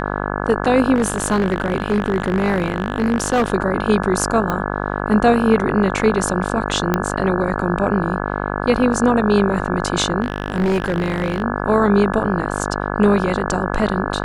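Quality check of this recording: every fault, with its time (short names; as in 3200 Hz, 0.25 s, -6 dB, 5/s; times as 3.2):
buzz 50 Hz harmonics 34 -23 dBFS
0.94–3.52 clipped -12 dBFS
4.5 pop -8 dBFS
6.94 pop -4 dBFS
10.22–11.42 clipped -14 dBFS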